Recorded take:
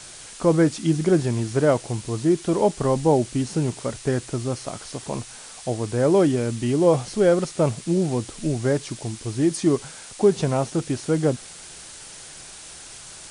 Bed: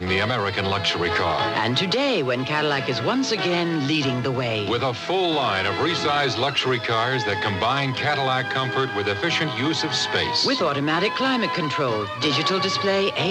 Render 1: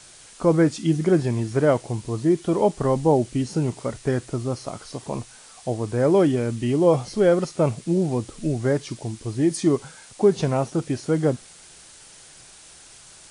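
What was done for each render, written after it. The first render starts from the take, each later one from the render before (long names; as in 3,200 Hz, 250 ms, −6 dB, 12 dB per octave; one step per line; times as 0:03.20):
noise reduction from a noise print 6 dB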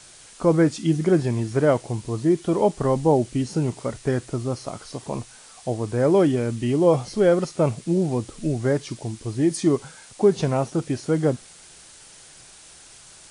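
no processing that can be heard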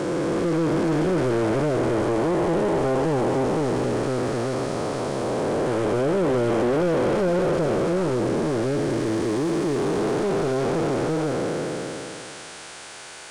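spectrum smeared in time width 1,120 ms
mid-hump overdrive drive 26 dB, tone 1,400 Hz, clips at −14 dBFS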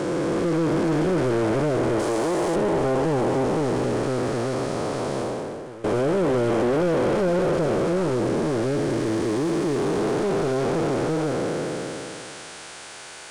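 0:01.99–0:02.56: bass and treble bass −7 dB, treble +9 dB
0:05.19–0:05.84: fade out quadratic, to −16.5 dB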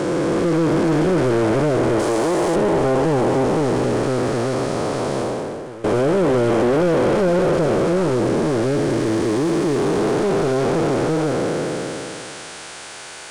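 level +4.5 dB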